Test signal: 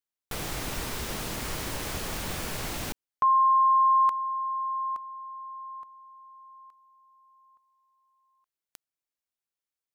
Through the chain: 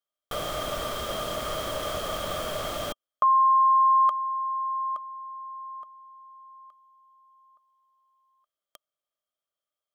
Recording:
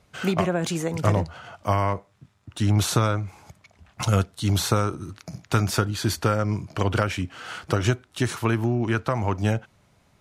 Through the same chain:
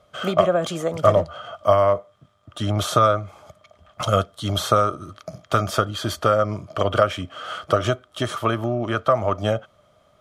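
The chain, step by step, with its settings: small resonant body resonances 610/1200/3200 Hz, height 18 dB, ringing for 30 ms; trim -3.5 dB

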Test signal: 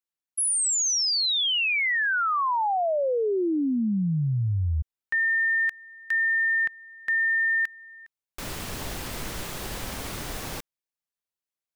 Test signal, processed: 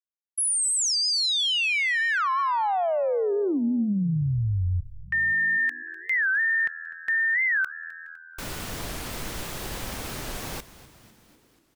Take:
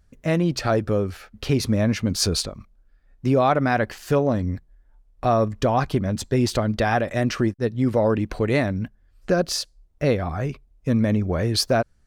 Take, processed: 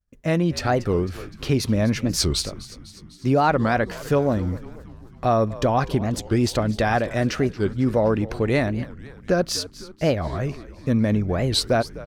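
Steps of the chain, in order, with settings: expander -46 dBFS; frequency-shifting echo 250 ms, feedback 62%, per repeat -82 Hz, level -17 dB; warped record 45 rpm, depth 250 cents

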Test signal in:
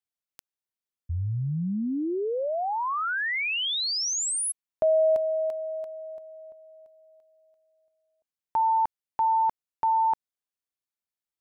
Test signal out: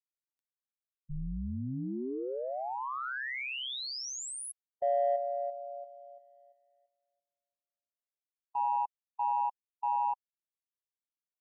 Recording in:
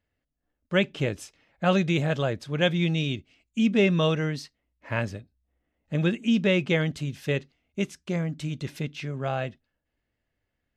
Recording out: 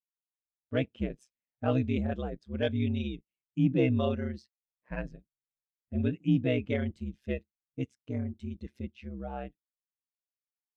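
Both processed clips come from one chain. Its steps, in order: ring modulator 65 Hz; waveshaping leveller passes 1; spectral contrast expander 1.5:1; trim -4.5 dB

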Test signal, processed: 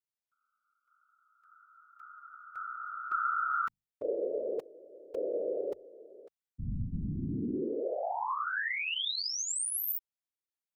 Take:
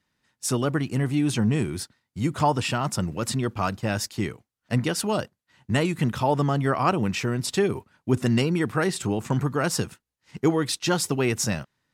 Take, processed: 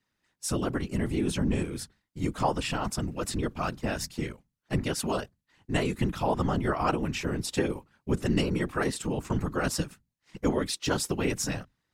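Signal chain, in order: hum notches 50/100 Hz; whisper effect; trim -4.5 dB

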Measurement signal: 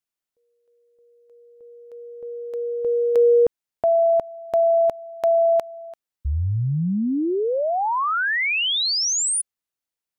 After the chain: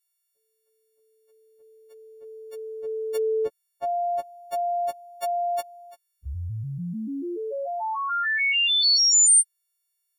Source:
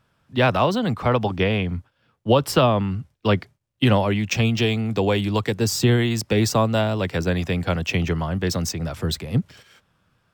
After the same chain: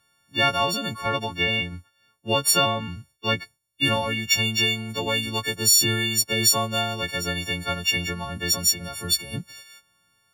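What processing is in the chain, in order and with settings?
partials quantised in pitch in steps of 4 st; tilt shelf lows -3.5 dB, about 1.4 kHz; trim -5.5 dB

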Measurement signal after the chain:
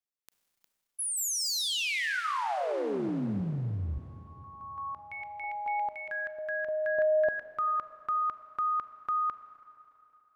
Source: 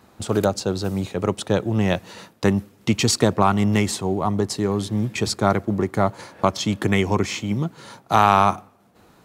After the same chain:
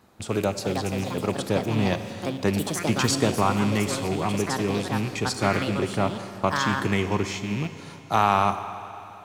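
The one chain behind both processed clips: rattle on loud lows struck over -23 dBFS, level -21 dBFS; Schroeder reverb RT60 3.2 s, combs from 32 ms, DRR 10 dB; ever faster or slower copies 429 ms, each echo +5 st, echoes 2, each echo -6 dB; trim -5 dB

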